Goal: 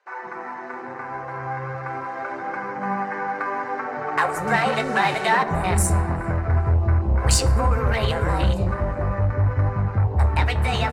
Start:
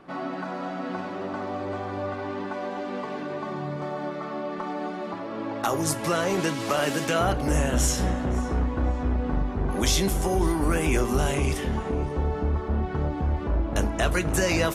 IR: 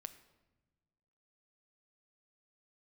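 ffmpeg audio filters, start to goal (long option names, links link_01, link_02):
-filter_complex "[0:a]afwtdn=0.0282,lowpass=frequency=7100:width=0.5412,lowpass=frequency=7100:width=1.3066,equalizer=frequency=210:width_type=o:width=1.5:gain=-12,asetrate=59535,aresample=44100,tiltshelf=frequency=700:gain=3,asplit=2[link_01][link_02];[link_02]asoftclip=type=hard:threshold=-27dB,volume=-10dB[link_03];[link_01][link_03]amix=inputs=2:normalize=0,bandreject=frequency=3400:width=8.6,acrossover=split=460[link_04][link_05];[link_04]adelay=170[link_06];[link_06][link_05]amix=inputs=2:normalize=0,asplit=2[link_07][link_08];[1:a]atrim=start_sample=2205,highshelf=frequency=5300:gain=8.5[link_09];[link_08][link_09]afir=irnorm=-1:irlink=0,volume=4.5dB[link_10];[link_07][link_10]amix=inputs=2:normalize=0,dynaudnorm=framelen=980:gausssize=5:maxgain=11.5dB,flanger=delay=4.9:depth=5.3:regen=-54:speed=0.34:shape=triangular"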